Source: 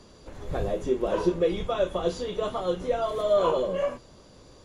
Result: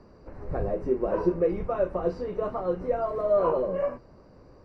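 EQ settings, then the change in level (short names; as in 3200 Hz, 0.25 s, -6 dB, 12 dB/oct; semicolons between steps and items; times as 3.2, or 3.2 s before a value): running mean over 13 samples; 0.0 dB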